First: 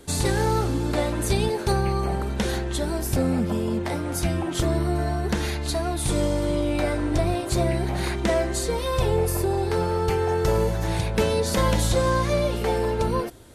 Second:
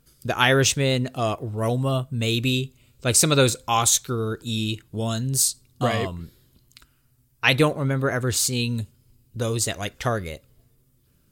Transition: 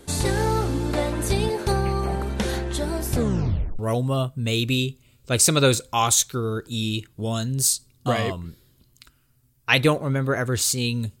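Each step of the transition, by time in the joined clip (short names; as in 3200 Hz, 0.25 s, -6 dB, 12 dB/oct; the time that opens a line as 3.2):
first
3.14 tape stop 0.65 s
3.79 switch to second from 1.54 s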